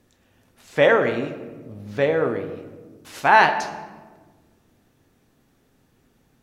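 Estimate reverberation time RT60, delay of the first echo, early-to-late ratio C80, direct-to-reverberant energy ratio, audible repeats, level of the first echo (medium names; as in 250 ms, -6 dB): 1.4 s, no echo, 11.5 dB, 6.5 dB, no echo, no echo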